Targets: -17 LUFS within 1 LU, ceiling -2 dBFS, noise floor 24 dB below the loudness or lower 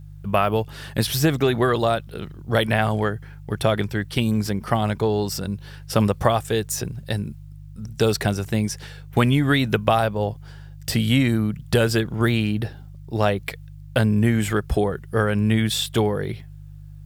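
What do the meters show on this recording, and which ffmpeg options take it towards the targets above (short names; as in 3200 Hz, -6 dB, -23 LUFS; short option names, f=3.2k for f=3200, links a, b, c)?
hum 50 Hz; harmonics up to 150 Hz; hum level -37 dBFS; loudness -22.5 LUFS; peak -2.5 dBFS; loudness target -17.0 LUFS
-> -af "bandreject=f=50:t=h:w=4,bandreject=f=100:t=h:w=4,bandreject=f=150:t=h:w=4"
-af "volume=5.5dB,alimiter=limit=-2dB:level=0:latency=1"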